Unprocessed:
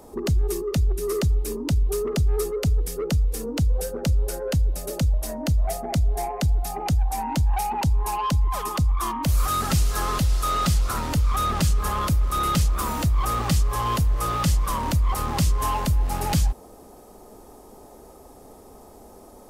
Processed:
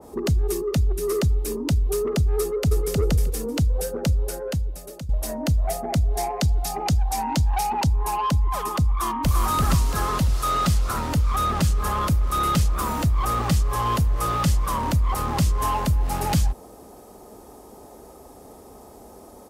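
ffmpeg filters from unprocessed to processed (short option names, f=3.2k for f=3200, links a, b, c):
-filter_complex "[0:a]asplit=2[a][b];[b]afade=t=in:st=2.4:d=0.01,afade=t=out:st=2.98:d=0.01,aecho=0:1:310|620|930:0.749894|0.112484|0.0168726[c];[a][c]amix=inputs=2:normalize=0,asettb=1/sr,asplit=3[d][e][f];[d]atrim=end=6.144[g];[e]atrim=start=6.14:end=7.87,asetpts=PTS-STARTPTS,afade=t=in:d=0.004:c=qsin,afade=t=out:st=1.726:d=0.004:c=qsin,equalizer=f=5k:t=o:w=1.5:g=6[h];[f]atrim=start=7.866[i];[g][h]acrossfade=d=0.004:c1=hsin:c2=qsin[j];[j][i]acrossfade=d=0.004:c1=qsin:c2=hsin,asplit=2[k][l];[l]afade=t=in:st=8.9:d=0.01,afade=t=out:st=9.41:d=0.01,aecho=0:1:340|680|1020|1360|1700|2040:0.749894|0.337452|0.151854|0.0683341|0.0307503|0.0138377[m];[k][m]amix=inputs=2:normalize=0,asettb=1/sr,asplit=3[n][o][p];[n]atrim=end=10.694[q];[o]atrim=start=10.69:end=11.81,asetpts=PTS-STARTPTS,afade=t=in:d=0.004:c=qsin,afade=t=out:st=1.116:d=0.004:c=qsin,aeval=exprs='sgn(val(0))*max(abs(val(0))-0.00178,0)':c=same[r];[p]atrim=start=11.806[s];[q][r]acrossfade=d=0.004:c1=hsin:c2=qsin[t];[t][s]acrossfade=d=0.004:c1=qsin:c2=hsin,asplit=2[u][v];[u]atrim=end=5.09,asetpts=PTS-STARTPTS,afade=t=out:st=4.08:d=1.01:silence=0.158489[w];[v]atrim=start=5.09,asetpts=PTS-STARTPTS,afade=t=in:d=0.004:c=hsin:silence=0.158489[x];[w][x]concat=n=2:v=0:a=1,highpass=43,acontrast=75,adynamicequalizer=threshold=0.0251:dfrequency=2000:dqfactor=0.7:tfrequency=2000:tqfactor=0.7:attack=5:release=100:ratio=0.375:range=2:mode=cutabove:tftype=highshelf,volume=-5dB"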